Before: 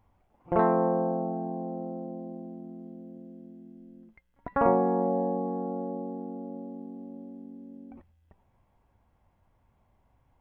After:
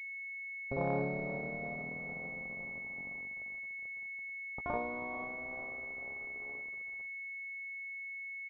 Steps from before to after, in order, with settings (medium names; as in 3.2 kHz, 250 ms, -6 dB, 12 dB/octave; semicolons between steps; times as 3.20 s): gliding tape speed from 68% -> 177%; in parallel at -2.5 dB: compression, threshold -37 dBFS, peak gain reduction 18 dB; on the sum: feedback comb 140 Hz, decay 0.34 s, harmonics all, mix 60%; on a send: feedback echo behind a low-pass 438 ms, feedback 76%, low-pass 840 Hz, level -15 dB; on the sum: harmonic-percussive split percussive +5 dB; crossover distortion -40 dBFS; peaking EQ 330 Hz -12.5 dB 0.4 oct; doubling 17 ms -14 dB; class-D stage that switches slowly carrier 2.2 kHz; trim -5 dB